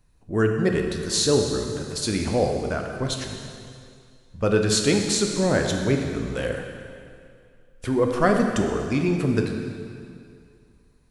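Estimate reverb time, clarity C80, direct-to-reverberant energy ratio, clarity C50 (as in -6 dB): 2.3 s, 5.0 dB, 2.5 dB, 4.0 dB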